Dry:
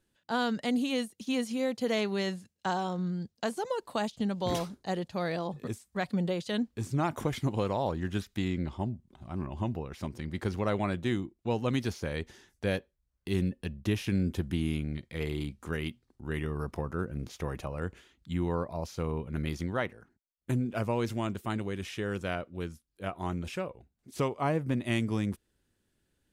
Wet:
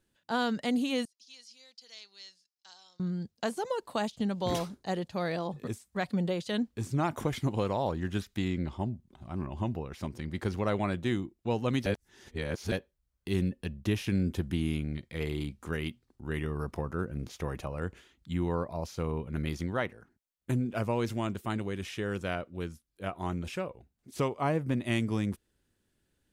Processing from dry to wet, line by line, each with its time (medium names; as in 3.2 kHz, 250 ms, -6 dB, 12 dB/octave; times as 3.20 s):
1.05–3.00 s: band-pass filter 5 kHz, Q 4.8
11.86–12.72 s: reverse